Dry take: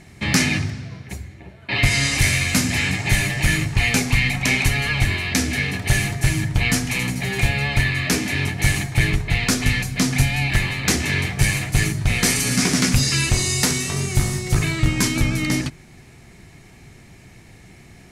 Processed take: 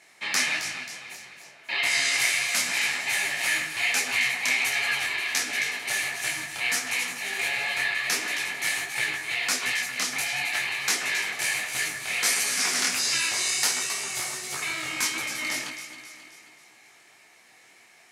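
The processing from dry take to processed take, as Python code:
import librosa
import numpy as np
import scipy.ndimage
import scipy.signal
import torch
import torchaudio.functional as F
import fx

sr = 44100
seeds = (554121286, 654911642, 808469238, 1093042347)

y = scipy.signal.sosfilt(scipy.signal.butter(2, 760.0, 'highpass', fs=sr, output='sos'), x)
y = fx.echo_alternate(y, sr, ms=134, hz=1900.0, feedback_pct=71, wet_db=-6.5)
y = fx.detune_double(y, sr, cents=50)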